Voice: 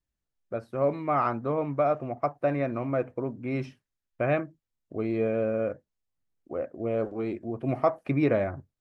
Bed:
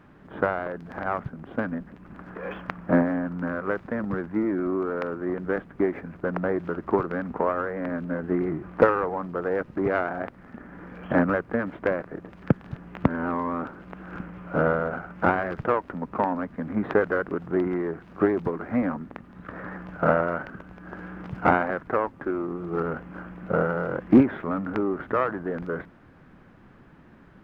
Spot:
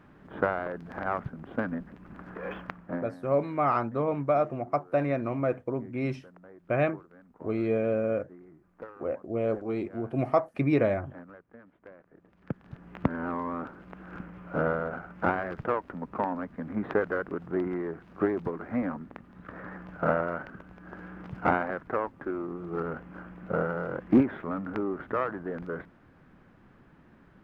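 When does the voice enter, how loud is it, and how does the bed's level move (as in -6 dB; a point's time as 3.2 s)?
2.50 s, 0.0 dB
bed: 2.59 s -2.5 dB
3.32 s -25.5 dB
11.92 s -25.5 dB
12.91 s -5 dB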